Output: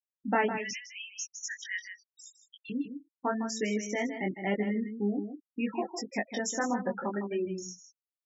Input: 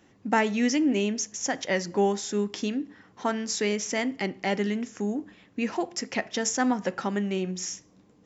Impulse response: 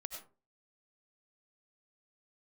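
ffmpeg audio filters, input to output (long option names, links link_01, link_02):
-filter_complex "[0:a]asettb=1/sr,asplit=3[link_01][link_02][link_03];[link_01]atrim=end=0.554[link_04];[link_02]atrim=start=0.55:end=2.7,asetpts=PTS-STARTPTS,afade=type=in:duration=0.004:curve=qsin,afade=type=out:start_time=2.146:duration=0.004:curve=qsin,highpass=frequency=1400:width=0.5412,highpass=frequency=1400:width=1.3066[link_05];[link_03]atrim=start=2.696[link_06];[link_04][link_05]acrossfade=duration=0.004:curve1=hsin:curve2=qsin[link_07];[link_07][link_06]acrossfade=duration=0.004:curve1=qsin:curve2=hsin,afftfilt=real='re*gte(hypot(re,im),0.0562)':imag='im*gte(hypot(re,im),0.0562)':win_size=1024:overlap=0.75,highshelf=frequency=4200:gain=-3.5,flanger=delay=18:depth=3.6:speed=0.83,asplit=2[link_08][link_09];[link_09]adelay=157.4,volume=-9dB,highshelf=frequency=4000:gain=-3.54[link_10];[link_08][link_10]amix=inputs=2:normalize=0"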